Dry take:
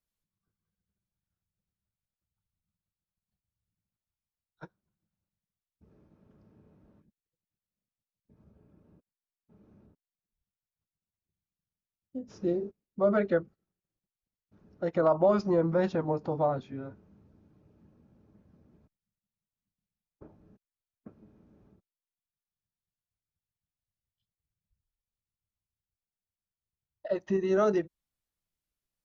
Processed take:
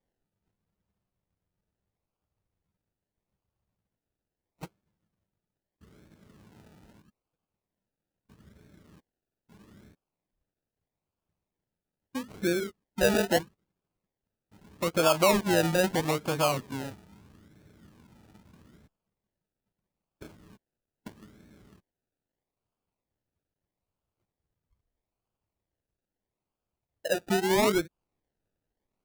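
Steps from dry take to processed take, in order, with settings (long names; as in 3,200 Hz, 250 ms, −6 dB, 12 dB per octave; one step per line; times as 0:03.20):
in parallel at −2 dB: downward compressor, threshold −38 dBFS, peak gain reduction 17.5 dB
on the sum: sample-and-hold swept by an LFO 32×, swing 60% 0.78 Hz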